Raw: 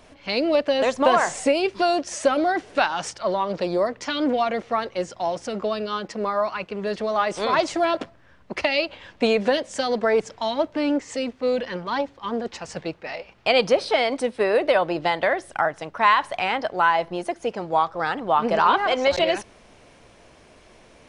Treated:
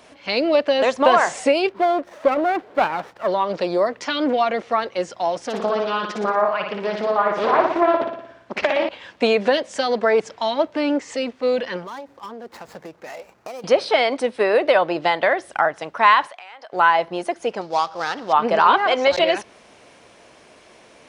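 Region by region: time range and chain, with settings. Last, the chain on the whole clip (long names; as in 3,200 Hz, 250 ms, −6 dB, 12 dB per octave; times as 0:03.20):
0:01.69–0:03.28: low-pass filter 1,600 Hz + low-shelf EQ 170 Hz −6 dB + windowed peak hold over 9 samples
0:05.44–0:08.89: treble cut that deepens with the level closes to 1,500 Hz, closed at −18.5 dBFS + flutter between parallel walls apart 10 metres, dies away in 0.73 s + highs frequency-modulated by the lows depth 0.36 ms
0:11.84–0:13.64: running median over 15 samples + downward compressor 8 to 1, threshold −34 dBFS
0:16.27–0:16.73: high-pass filter 600 Hz + downward compressor 8 to 1, threshold −40 dBFS
0:17.61–0:18.33: gap after every zero crossing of 0.071 ms + low-pass with resonance 5,000 Hz, resonance Q 3.2 + tuned comb filter 57 Hz, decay 1.7 s, mix 40%
whole clip: high-pass filter 280 Hz 6 dB per octave; dynamic equaliser 8,700 Hz, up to −6 dB, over −47 dBFS, Q 0.84; level +4 dB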